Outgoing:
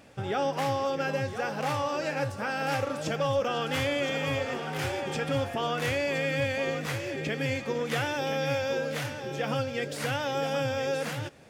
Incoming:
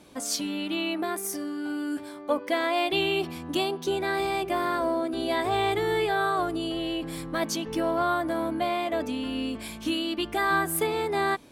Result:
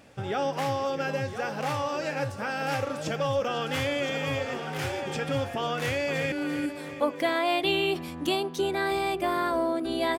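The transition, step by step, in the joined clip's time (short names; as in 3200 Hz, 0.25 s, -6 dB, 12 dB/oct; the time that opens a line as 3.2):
outgoing
5.74–6.32 echo throw 0.34 s, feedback 60%, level -9.5 dB
6.32 switch to incoming from 1.6 s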